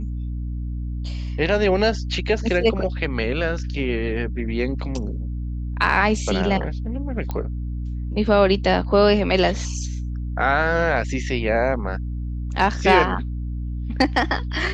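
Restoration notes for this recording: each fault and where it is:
mains hum 60 Hz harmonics 5 −27 dBFS
0:07.31: click −15 dBFS

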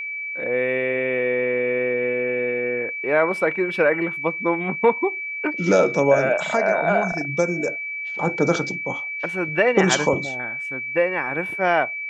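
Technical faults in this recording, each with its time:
whistle 2,300 Hz −27 dBFS

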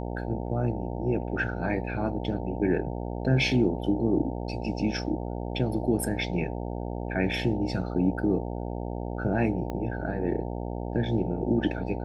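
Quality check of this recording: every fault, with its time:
mains buzz 60 Hz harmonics 15 −33 dBFS
0:09.70: click −21 dBFS

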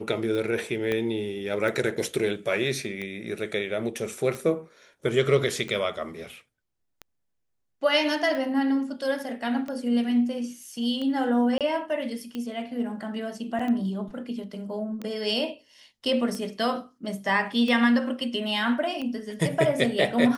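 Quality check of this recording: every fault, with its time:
scratch tick 45 rpm −21 dBFS
0:00.92: click −15 dBFS
0:11.58–0:11.61: drop-out 27 ms
0:13.59: drop-out 4.7 ms

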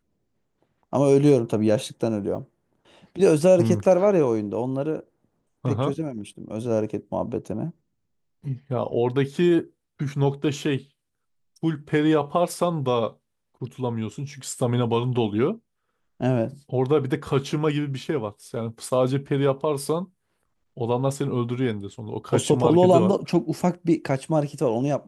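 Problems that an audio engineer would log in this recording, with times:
0:02.35: drop-out 4.4 ms

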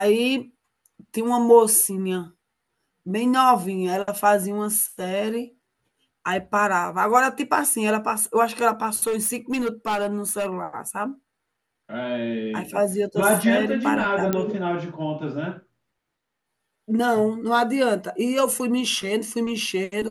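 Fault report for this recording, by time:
0:09.07–0:10.47: clipping −20 dBFS
0:14.33: click −9 dBFS

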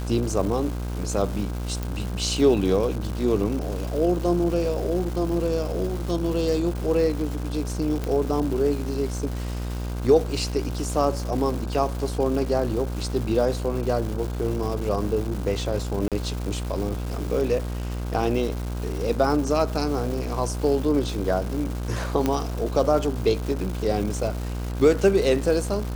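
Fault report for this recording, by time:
mains buzz 60 Hz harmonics 27 −29 dBFS
surface crackle 520 per second −31 dBFS
0:01.83: click
0:08.04: click
0:16.08–0:16.12: drop-out 37 ms
0:22.26: click −9 dBFS

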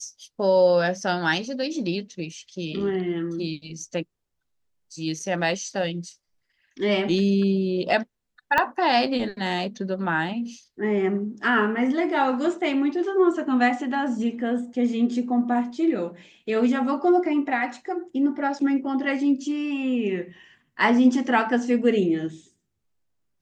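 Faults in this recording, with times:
0:08.58: click −8 dBFS

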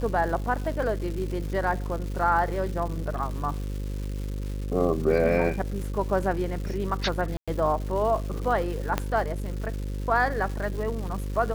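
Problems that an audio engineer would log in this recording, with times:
mains buzz 50 Hz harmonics 11 −31 dBFS
surface crackle 440 per second −35 dBFS
0:07.37–0:07.48: drop-out 106 ms
0:08.98: click −10 dBFS

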